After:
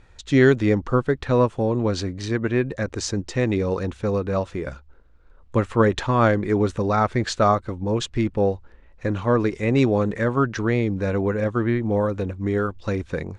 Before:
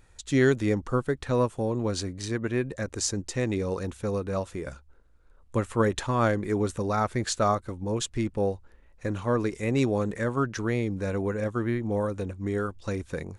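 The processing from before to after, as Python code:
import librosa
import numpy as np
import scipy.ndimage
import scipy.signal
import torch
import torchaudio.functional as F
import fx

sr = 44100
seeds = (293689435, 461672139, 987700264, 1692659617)

y = scipy.signal.sosfilt(scipy.signal.butter(2, 4500.0, 'lowpass', fs=sr, output='sos'), x)
y = F.gain(torch.from_numpy(y), 6.0).numpy()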